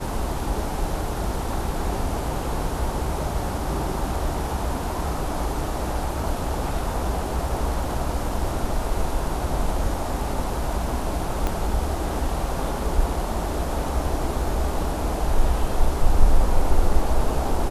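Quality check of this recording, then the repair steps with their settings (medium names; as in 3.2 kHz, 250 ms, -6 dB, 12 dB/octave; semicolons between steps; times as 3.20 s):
11.47 s: pop -11 dBFS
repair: de-click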